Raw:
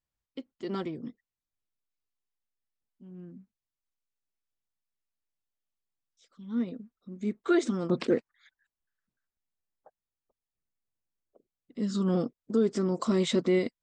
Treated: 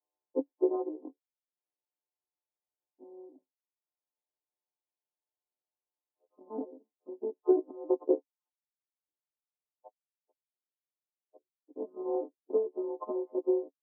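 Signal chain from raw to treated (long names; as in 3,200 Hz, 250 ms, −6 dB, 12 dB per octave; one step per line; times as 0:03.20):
every partial snapped to a pitch grid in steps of 3 semitones
transient designer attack +12 dB, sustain −7 dB
speech leveller 0.5 s
Chebyshev band-pass filter 280–1,000 Hz, order 5
level −4.5 dB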